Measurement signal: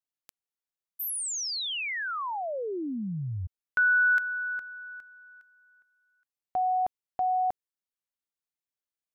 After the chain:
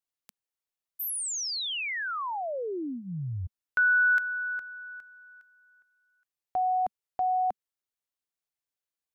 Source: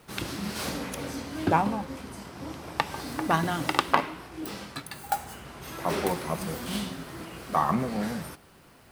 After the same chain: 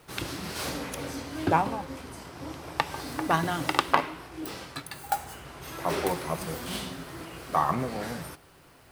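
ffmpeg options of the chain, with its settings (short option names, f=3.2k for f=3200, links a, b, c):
-af "equalizer=f=210:t=o:w=0.22:g=-12.5"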